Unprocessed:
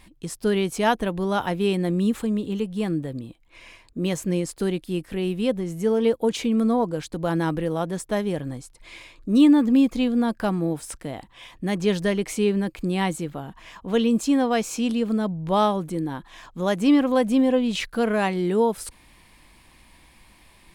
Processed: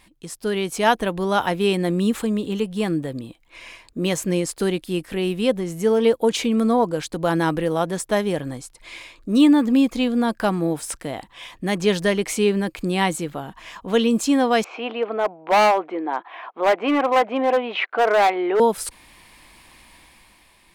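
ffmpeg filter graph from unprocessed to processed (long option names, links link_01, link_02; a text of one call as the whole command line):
ffmpeg -i in.wav -filter_complex "[0:a]asettb=1/sr,asplit=3[link_01][link_02][link_03];[link_01]atrim=end=14.644[link_04];[link_02]atrim=start=14.64:end=18.6,asetpts=PTS-STARTPTS,afade=type=in:duration=0.004:curve=qsin,afade=type=out:start_time=3.956:duration=0.004:curve=qsin,acontrast=23,highpass=frequency=390:width=0.5412,highpass=frequency=390:width=1.3066,equalizer=frequency=510:width_type=q:width=4:gain=-5,equalizer=frequency=730:width_type=q:width=4:gain=6,equalizer=frequency=1700:width_type=q:width=4:gain=-5,lowpass=frequency=2400:width=0.5412,lowpass=frequency=2400:width=1.3066,asoftclip=type=hard:threshold=-18dB[link_05];[link_03]atrim=start=18.596[link_06];[link_04][link_05]acrossfade=duration=0.004:curve1=hsin:curve2=qsin[link_07];[link_07][link_06]acrossfade=duration=0.004:curve1=qsin:curve2=hsin,dynaudnorm=framelen=110:gausssize=13:maxgain=6.5dB,lowshelf=frequency=290:gain=-7.5" out.wav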